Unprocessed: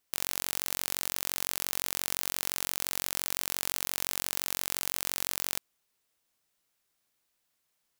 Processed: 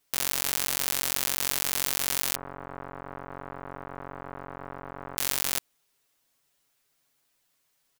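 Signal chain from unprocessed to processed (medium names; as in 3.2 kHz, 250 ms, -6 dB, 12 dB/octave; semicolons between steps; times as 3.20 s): 2.35–5.17 s: low-pass 1.3 kHz 24 dB/octave; comb 7.2 ms, depth 86%; trim +3 dB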